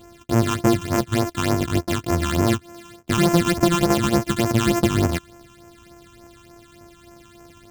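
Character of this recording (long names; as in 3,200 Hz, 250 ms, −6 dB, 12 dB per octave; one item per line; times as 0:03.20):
a buzz of ramps at a fixed pitch in blocks of 128 samples
phaser sweep stages 8, 3.4 Hz, lowest notch 570–3,900 Hz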